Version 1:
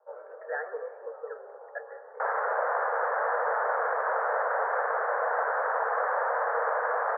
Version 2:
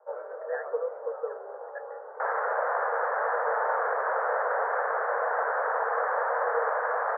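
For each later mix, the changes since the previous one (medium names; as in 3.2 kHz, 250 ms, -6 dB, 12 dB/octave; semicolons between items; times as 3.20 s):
speech -3.0 dB; first sound +6.5 dB; reverb: off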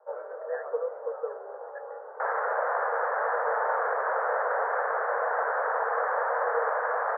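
speech -3.5 dB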